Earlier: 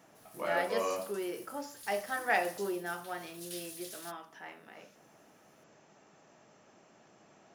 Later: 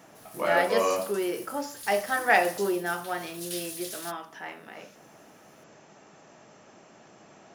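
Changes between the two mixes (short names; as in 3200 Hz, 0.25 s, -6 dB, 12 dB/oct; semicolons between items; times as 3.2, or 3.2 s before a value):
speech +8.0 dB; background +8.0 dB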